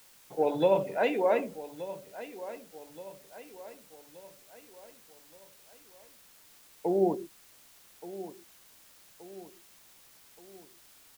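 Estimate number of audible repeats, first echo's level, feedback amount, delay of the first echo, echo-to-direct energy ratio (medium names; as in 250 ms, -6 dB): 4, -15.0 dB, 48%, 1175 ms, -14.0 dB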